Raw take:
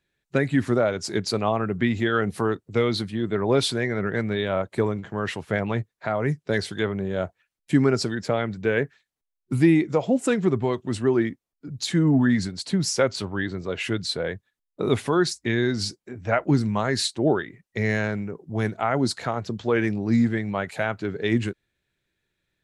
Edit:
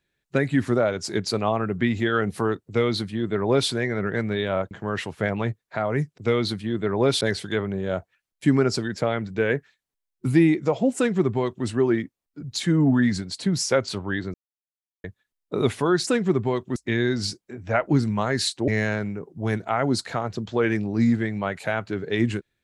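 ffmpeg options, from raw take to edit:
ffmpeg -i in.wav -filter_complex "[0:a]asplit=9[link_01][link_02][link_03][link_04][link_05][link_06][link_07][link_08][link_09];[link_01]atrim=end=4.712[link_10];[link_02]atrim=start=5.008:end=6.482[link_11];[link_03]atrim=start=2.668:end=3.702[link_12];[link_04]atrim=start=6.478:end=13.61,asetpts=PTS-STARTPTS,afade=type=out:start_time=7.128:duration=0.004:curve=hsin[link_13];[link_05]atrim=start=13.61:end=14.31,asetpts=PTS-STARTPTS,volume=0[link_14];[link_06]atrim=start=14.31:end=15.342,asetpts=PTS-STARTPTS,afade=type=in:duration=0.004:curve=hsin[link_15];[link_07]atrim=start=10.238:end=10.932[link_16];[link_08]atrim=start=15.338:end=17.262[link_17];[link_09]atrim=start=17.798[link_18];[link_10][link_11]acrossfade=duration=0.004:curve1=hsin:curve2=hsin[link_19];[link_19][link_12]acrossfade=duration=0.004:curve1=hsin:curve2=hsin[link_20];[link_13][link_14][link_15]concat=n=3:v=0:a=1[link_21];[link_20][link_21]acrossfade=duration=0.004:curve1=hsin:curve2=hsin[link_22];[link_22][link_16]acrossfade=duration=0.004:curve1=hsin:curve2=hsin[link_23];[link_23][link_17]acrossfade=duration=0.004:curve1=hsin:curve2=hsin[link_24];[link_24][link_18]acrossfade=duration=0.004:curve1=hsin:curve2=hsin" out.wav

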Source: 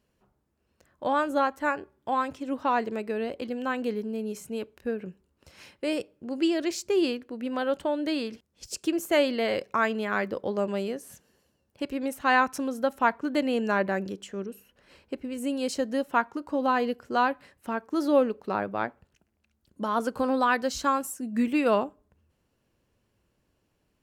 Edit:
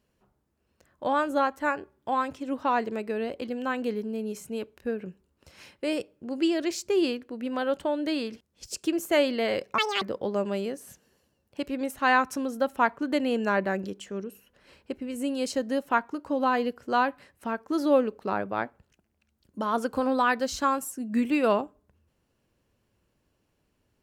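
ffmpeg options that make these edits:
ffmpeg -i in.wav -filter_complex "[0:a]asplit=3[link_01][link_02][link_03];[link_01]atrim=end=9.784[link_04];[link_02]atrim=start=9.78:end=10.24,asetpts=PTS-STARTPTS,asetrate=85995,aresample=44100,atrim=end_sample=10403,asetpts=PTS-STARTPTS[link_05];[link_03]atrim=start=10.236[link_06];[link_04][link_05]acrossfade=duration=0.004:curve1=hsin:curve2=hsin[link_07];[link_07][link_06]acrossfade=duration=0.004:curve1=hsin:curve2=hsin" out.wav

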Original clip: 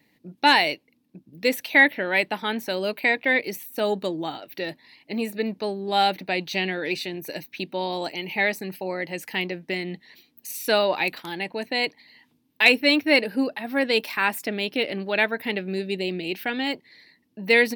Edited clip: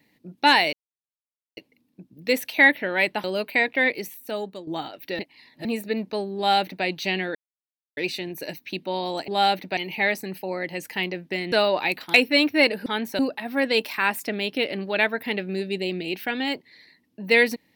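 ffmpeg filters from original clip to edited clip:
ffmpeg -i in.wav -filter_complex "[0:a]asplit=13[link_01][link_02][link_03][link_04][link_05][link_06][link_07][link_08][link_09][link_10][link_11][link_12][link_13];[link_01]atrim=end=0.73,asetpts=PTS-STARTPTS,afade=type=out:start_time=0.726:duration=0.004:curve=hsin,apad=pad_dur=0.84[link_14];[link_02]atrim=start=0.73:end=2.402,asetpts=PTS-STARTPTS,afade=type=in:duration=0.004:curve=hsin[link_15];[link_03]atrim=start=2.728:end=4.16,asetpts=PTS-STARTPTS,afade=type=out:start_time=0.642:duration=0.79:silence=0.211349[link_16];[link_04]atrim=start=4.16:end=4.682,asetpts=PTS-STARTPTS,afade=type=in:duration=0.004:curve=hsin:silence=0.211349[link_17];[link_05]atrim=start=4.678:end=5.142,asetpts=PTS-STARTPTS,areverse[link_18];[link_06]atrim=start=5.138:end=6.84,asetpts=PTS-STARTPTS,afade=type=out:start_time=1.698:duration=0.004:curve=hsin,apad=pad_dur=0.62[link_19];[link_07]atrim=start=6.84:end=8.152,asetpts=PTS-STARTPTS,afade=type=in:duration=0.004:curve=hsin[link_20];[link_08]atrim=start=5.848:end=6.342[link_21];[link_09]atrim=start=8.148:end=9.902[link_22];[link_10]atrim=start=10.678:end=11.302[link_23];[link_11]atrim=start=12.658:end=13.382[link_24];[link_12]atrim=start=2.398:end=2.732[link_25];[link_13]atrim=start=13.378[link_26];[link_14][link_15]concat=n=2:v=0:a=1[link_27];[link_16][link_17]concat=n=2:v=0:a=1[link_28];[link_27][link_28]acrossfade=duration=0.004:curve1=hsin:curve2=hsin[link_29];[link_29][link_18]acrossfade=duration=0.004:curve1=hsin:curve2=hsin[link_30];[link_19][link_20]concat=n=2:v=0:a=1[link_31];[link_30][link_31]acrossfade=duration=0.004:curve1=hsin:curve2=hsin[link_32];[link_32][link_21]acrossfade=duration=0.004:curve1=hsin:curve2=hsin[link_33];[link_33][link_22]acrossfade=duration=0.004:curve1=hsin:curve2=hsin[link_34];[link_34][link_23]acrossfade=duration=0.004:curve1=hsin:curve2=hsin[link_35];[link_35][link_24]acrossfade=duration=0.004:curve1=hsin:curve2=hsin[link_36];[link_36][link_25]acrossfade=duration=0.004:curve1=hsin:curve2=hsin[link_37];[link_37][link_26]acrossfade=duration=0.004:curve1=hsin:curve2=hsin" out.wav

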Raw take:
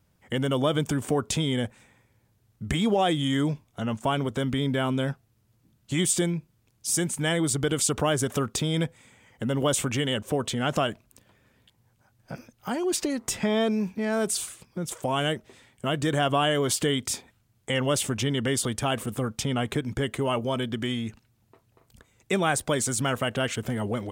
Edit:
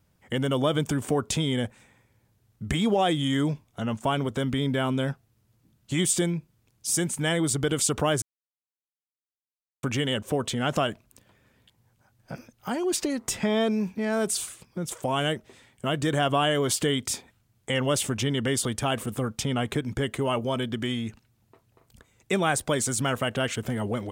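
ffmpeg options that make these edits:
ffmpeg -i in.wav -filter_complex "[0:a]asplit=3[link_01][link_02][link_03];[link_01]atrim=end=8.22,asetpts=PTS-STARTPTS,afade=type=out:start_time=8.216:duration=0.004:curve=hsin[link_04];[link_02]atrim=start=8.22:end=9.83,asetpts=PTS-STARTPTS,volume=0[link_05];[link_03]atrim=start=9.83,asetpts=PTS-STARTPTS,afade=type=in:duration=0.004:curve=hsin[link_06];[link_04][link_05][link_06]concat=n=3:v=0:a=1" out.wav

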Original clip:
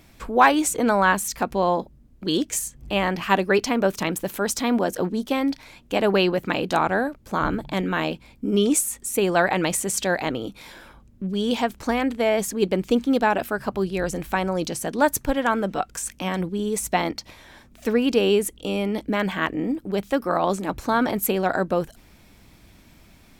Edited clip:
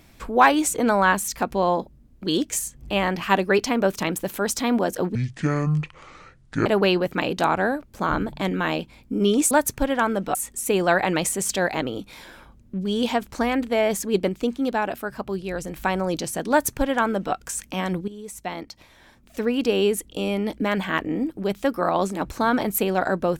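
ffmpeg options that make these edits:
ffmpeg -i in.wav -filter_complex "[0:a]asplit=8[link_01][link_02][link_03][link_04][link_05][link_06][link_07][link_08];[link_01]atrim=end=5.154[link_09];[link_02]atrim=start=5.15:end=5.98,asetpts=PTS-STARTPTS,asetrate=24255,aresample=44100[link_10];[link_03]atrim=start=5.976:end=8.832[link_11];[link_04]atrim=start=14.978:end=15.822[link_12];[link_05]atrim=start=8.828:end=12.772[link_13];[link_06]atrim=start=12.768:end=14.242,asetpts=PTS-STARTPTS,volume=-4dB[link_14];[link_07]atrim=start=14.238:end=16.56,asetpts=PTS-STARTPTS,afade=type=out:start_time=2.318:duration=0.004:curve=hsin:silence=0.188365[link_15];[link_08]atrim=start=16.56,asetpts=PTS-STARTPTS,afade=type=in:duration=2.1:silence=0.188365[link_16];[link_09][link_10]acrossfade=duration=0.004:curve1=hsin:curve2=hsin[link_17];[link_17][link_11]acrossfade=duration=0.004:curve1=hsin:curve2=hsin[link_18];[link_18][link_12]acrossfade=duration=0.004:curve1=hsin:curve2=hsin[link_19];[link_19][link_13]acrossfade=duration=0.004:curve1=hsin:curve2=hsin[link_20];[link_20][link_14]acrossfade=duration=0.004:curve1=hsin:curve2=hsin[link_21];[link_15][link_16]concat=n=2:v=0:a=1[link_22];[link_21][link_22]acrossfade=duration=0.004:curve1=hsin:curve2=hsin" out.wav

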